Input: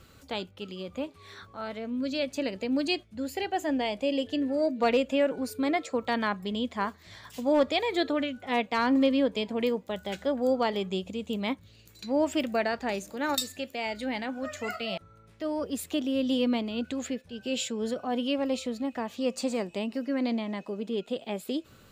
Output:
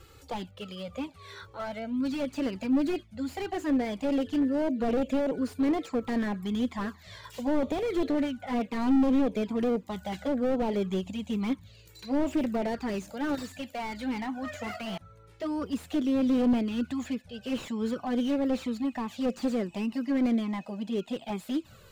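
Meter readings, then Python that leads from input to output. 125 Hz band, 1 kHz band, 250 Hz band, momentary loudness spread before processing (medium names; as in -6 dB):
+3.5 dB, -4.0 dB, +2.5 dB, 10 LU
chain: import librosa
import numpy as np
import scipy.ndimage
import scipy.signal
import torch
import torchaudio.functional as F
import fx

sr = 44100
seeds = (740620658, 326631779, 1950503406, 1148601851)

y = fx.env_flanger(x, sr, rest_ms=2.5, full_db=-22.0)
y = fx.slew_limit(y, sr, full_power_hz=16.0)
y = F.gain(torch.from_numpy(y), 4.5).numpy()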